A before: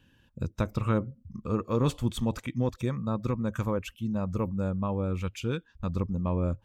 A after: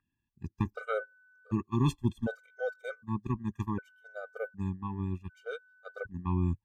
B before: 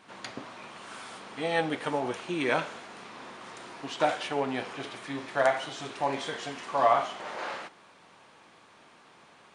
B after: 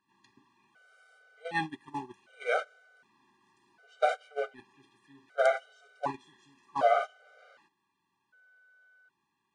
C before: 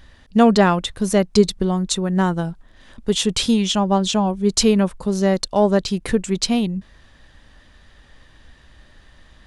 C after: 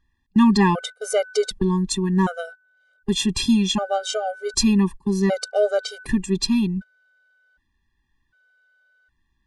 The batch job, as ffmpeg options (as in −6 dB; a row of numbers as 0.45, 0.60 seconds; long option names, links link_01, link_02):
-af "aeval=exprs='val(0)+0.0112*sin(2*PI*1500*n/s)':channel_layout=same,agate=range=-21dB:threshold=-27dB:ratio=16:detection=peak,afftfilt=real='re*gt(sin(2*PI*0.66*pts/sr)*(1-2*mod(floor(b*sr/1024/400),2)),0)':imag='im*gt(sin(2*PI*0.66*pts/sr)*(1-2*mod(floor(b*sr/1024/400),2)),0)':win_size=1024:overlap=0.75"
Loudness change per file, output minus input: −4.5, −1.5, −2.5 LU